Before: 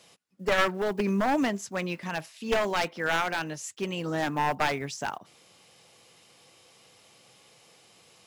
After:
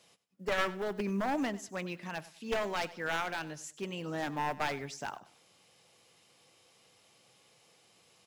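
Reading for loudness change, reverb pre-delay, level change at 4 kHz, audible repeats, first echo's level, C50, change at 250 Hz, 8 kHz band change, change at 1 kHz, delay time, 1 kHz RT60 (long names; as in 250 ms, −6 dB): −7.0 dB, no reverb audible, −7.0 dB, 2, −18.0 dB, no reverb audible, −7.0 dB, −7.0 dB, −7.0 dB, 98 ms, no reverb audible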